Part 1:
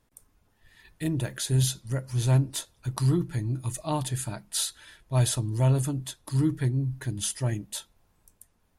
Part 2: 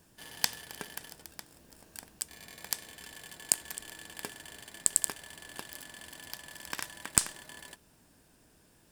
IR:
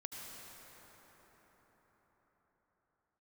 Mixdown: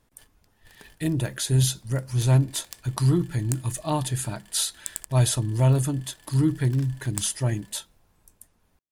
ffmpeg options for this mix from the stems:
-filter_complex "[0:a]volume=3dB,asplit=2[link_01][link_02];[1:a]aeval=exprs='0.668*(cos(1*acos(clip(val(0)/0.668,-1,1)))-cos(1*PI/2))+0.188*(cos(7*acos(clip(val(0)/0.668,-1,1)))-cos(7*PI/2))':channel_layout=same,volume=-7.5dB[link_03];[link_02]apad=whole_len=392951[link_04];[link_03][link_04]sidechaingate=range=-33dB:threshold=-53dB:ratio=16:detection=peak[link_05];[link_01][link_05]amix=inputs=2:normalize=0"

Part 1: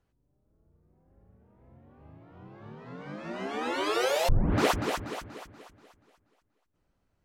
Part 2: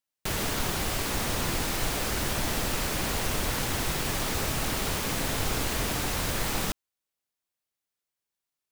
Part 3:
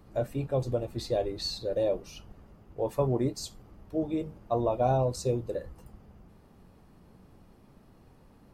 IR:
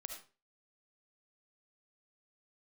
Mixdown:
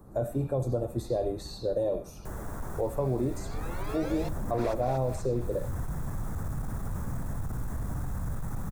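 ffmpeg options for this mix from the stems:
-filter_complex "[0:a]volume=-10.5dB[link_01];[1:a]asoftclip=type=tanh:threshold=-31dB,asubboost=boost=11:cutoff=120,adelay=2000,volume=-3.5dB,asplit=2[link_02][link_03];[link_03]volume=-13dB[link_04];[2:a]highshelf=frequency=3100:gain=9,volume=2dB,asplit=3[link_05][link_06][link_07];[link_06]volume=-7dB[link_08];[link_07]apad=whole_len=472377[link_09];[link_02][link_09]sidechaincompress=threshold=-33dB:ratio=8:attack=16:release=254[link_10];[link_10][link_05]amix=inputs=2:normalize=0,asuperstop=centerf=3300:order=4:qfactor=0.59,alimiter=limit=-21.5dB:level=0:latency=1:release=16,volume=0dB[link_11];[3:a]atrim=start_sample=2205[link_12];[link_04][link_08]amix=inputs=2:normalize=0[link_13];[link_13][link_12]afir=irnorm=-1:irlink=0[link_14];[link_01][link_11][link_14]amix=inputs=3:normalize=0,highshelf=frequency=5800:gain=-6.5,bandreject=frequency=3000:width=5.1,acrossover=split=110|4100[link_15][link_16][link_17];[link_15]acompressor=threshold=-33dB:ratio=4[link_18];[link_16]acompressor=threshold=-25dB:ratio=4[link_19];[link_17]acompressor=threshold=-51dB:ratio=4[link_20];[link_18][link_19][link_20]amix=inputs=3:normalize=0"

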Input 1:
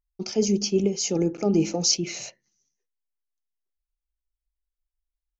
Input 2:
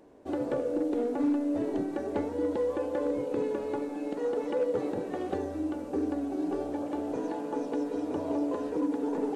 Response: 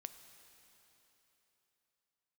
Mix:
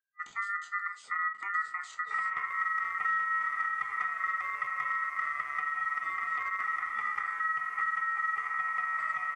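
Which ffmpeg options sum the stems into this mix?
-filter_complex "[0:a]flanger=delay=8.8:depth=8.3:regen=61:speed=0.78:shape=triangular,volume=-4dB[link_01];[1:a]aeval=exprs='0.0891*(cos(1*acos(clip(val(0)/0.0891,-1,1)))-cos(1*PI/2))+0.00891*(cos(4*acos(clip(val(0)/0.0891,-1,1)))-cos(4*PI/2))+0.01*(cos(6*acos(clip(val(0)/0.0891,-1,1)))-cos(6*PI/2))+0.00282*(cos(8*acos(clip(val(0)/0.0891,-1,1)))-cos(8*PI/2))':channel_layout=same,adelay=1850,volume=0dB[link_02];[link_01][link_02]amix=inputs=2:normalize=0,superequalizer=6b=3.16:12b=0.355:13b=0.708:16b=0.447,acrossover=split=450|3100[link_03][link_04][link_05];[link_03]acompressor=threshold=-28dB:ratio=4[link_06];[link_04]acompressor=threshold=-44dB:ratio=4[link_07];[link_05]acompressor=threshold=-60dB:ratio=4[link_08];[link_06][link_07][link_08]amix=inputs=3:normalize=0,aeval=exprs='val(0)*sin(2*PI*1600*n/s)':channel_layout=same"

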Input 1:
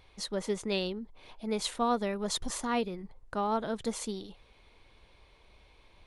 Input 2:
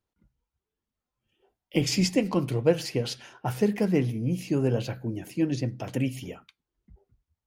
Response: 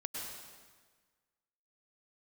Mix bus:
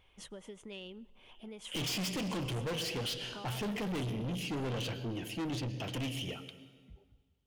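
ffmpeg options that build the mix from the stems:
-filter_complex "[0:a]equalizer=frequency=4200:width=2.3:gain=-15,acompressor=threshold=-36dB:ratio=10,volume=-8dB,asplit=2[link_01][link_02];[link_02]volume=-22.5dB[link_03];[1:a]volume=-2.5dB,asplit=2[link_04][link_05];[link_05]volume=-11.5dB[link_06];[2:a]atrim=start_sample=2205[link_07];[link_03][link_06]amix=inputs=2:normalize=0[link_08];[link_08][link_07]afir=irnorm=-1:irlink=0[link_09];[link_01][link_04][link_09]amix=inputs=3:normalize=0,equalizer=frequency=3100:width=2.6:gain=14,asoftclip=type=tanh:threshold=-33.5dB"

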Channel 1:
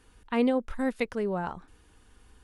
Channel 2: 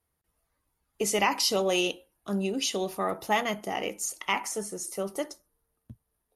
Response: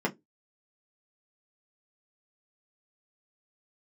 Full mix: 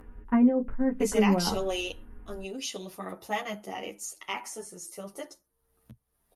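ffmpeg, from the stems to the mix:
-filter_complex "[0:a]aemphasis=mode=reproduction:type=bsi,acompressor=threshold=-26dB:ratio=6,lowpass=frequency=2200:width=0.5412,lowpass=frequency=2200:width=1.3066,volume=1.5dB,asplit=2[link_01][link_02];[link_02]volume=-11dB[link_03];[1:a]volume=-3dB[link_04];[2:a]atrim=start_sample=2205[link_05];[link_03][link_05]afir=irnorm=-1:irlink=0[link_06];[link_01][link_04][link_06]amix=inputs=3:normalize=0,acompressor=mode=upward:threshold=-42dB:ratio=2.5,asplit=2[link_07][link_08];[link_08]adelay=10,afreqshift=0.46[link_09];[link_07][link_09]amix=inputs=2:normalize=1"

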